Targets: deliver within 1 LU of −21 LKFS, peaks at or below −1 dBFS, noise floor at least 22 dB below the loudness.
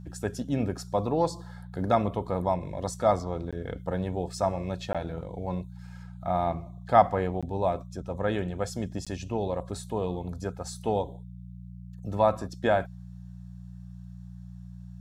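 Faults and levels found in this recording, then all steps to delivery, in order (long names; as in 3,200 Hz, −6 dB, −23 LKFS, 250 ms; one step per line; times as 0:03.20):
number of dropouts 4; longest dropout 16 ms; mains hum 60 Hz; hum harmonics up to 180 Hz; level of the hum −40 dBFS; integrated loudness −29.5 LKFS; sample peak −5.5 dBFS; target loudness −21.0 LKFS
→ repair the gap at 0:03.51/0:04.93/0:07.41/0:09.05, 16 ms
hum removal 60 Hz, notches 3
level +8.5 dB
brickwall limiter −1 dBFS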